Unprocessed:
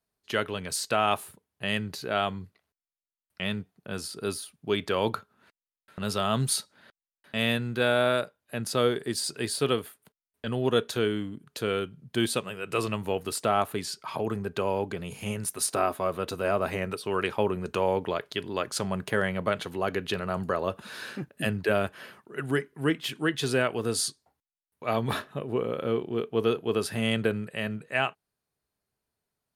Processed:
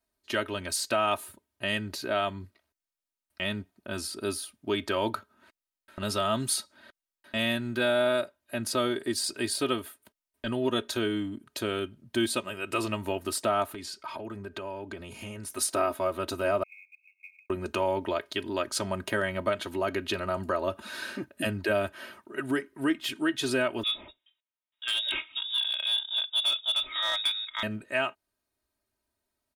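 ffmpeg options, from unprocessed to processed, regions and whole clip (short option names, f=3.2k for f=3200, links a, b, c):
-filter_complex "[0:a]asettb=1/sr,asplit=3[a][b][c];[a]atrim=end=13.744[d];[b]atrim=start=13.74:end=15.5,asetpts=PTS-STARTPTS,afade=t=in:d=0.004:c=qsin,afade=t=out:st=1.756:d=0.004:c=qsin,highshelf=f=7.3k:g=-7,acompressor=threshold=-38dB:ratio=3:attack=3.2:release=140:knee=1:detection=peak[e];[c]atrim=start=15.496[f];[d][e]acrossfade=d=0.004:c1=hsin:c2=qsin[g];[g][f]acrossfade=d=0.004:c1=qsin:c2=hsin,asettb=1/sr,asplit=3[h][i][j];[h]atrim=end=16.634[k];[i]atrim=start=16.63:end=17.5,asetpts=PTS-STARTPTS,afade=t=in:d=0.004:c=qsin,afade=t=out:st=0.866:d=0.004:c=qsin,acompressor=threshold=-37dB:ratio=12:attack=3.2:release=140:knee=1:detection=peak,asuperpass=centerf=2400:order=20:qfactor=4.3,acrusher=bits=7:mode=log:mix=0:aa=0.000001[l];[j]atrim=start=17.496[m];[k][l]acrossfade=d=0.004:c1=hsin:c2=qsin[n];[n][m]acrossfade=d=0.004:c1=qsin:c2=hsin,asettb=1/sr,asplit=3[o][p][q];[o]atrim=end=23.834[r];[p]atrim=start=23.83:end=27.63,asetpts=PTS-STARTPTS,afade=t=in:d=0.004:c=qsin,afade=t=out:st=3.796:d=0.004:c=qsin,lowshelf=f=170:g=-10,lowpass=f=3.3k:t=q:w=0.5098,lowpass=f=3.3k:t=q:w=0.6013,lowpass=f=3.3k:t=q:w=0.9,lowpass=f=3.3k:t=q:w=2.563,afreqshift=-3900,asoftclip=type=hard:threshold=-22.5dB[s];[q]atrim=start=27.626[t];[r][s]acrossfade=d=0.004:c1=hsin:c2=qsin[u];[u][t]acrossfade=d=0.004:c1=qsin:c2=hsin,aecho=1:1:3.2:0.79,acompressor=threshold=-29dB:ratio=1.5"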